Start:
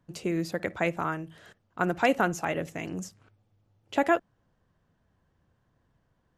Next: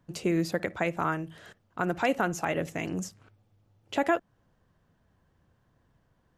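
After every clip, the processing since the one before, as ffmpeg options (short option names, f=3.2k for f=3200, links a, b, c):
-af "alimiter=limit=-18dB:level=0:latency=1:release=236,volume=2.5dB"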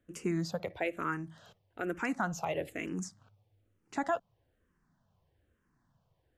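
-filter_complex "[0:a]asplit=2[a][b];[b]afreqshift=-1.1[c];[a][c]amix=inputs=2:normalize=1,volume=-3dB"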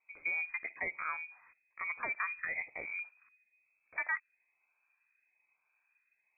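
-af "lowpass=f=2.2k:t=q:w=0.5098,lowpass=f=2.2k:t=q:w=0.6013,lowpass=f=2.2k:t=q:w=0.9,lowpass=f=2.2k:t=q:w=2.563,afreqshift=-2600,volume=-3.5dB"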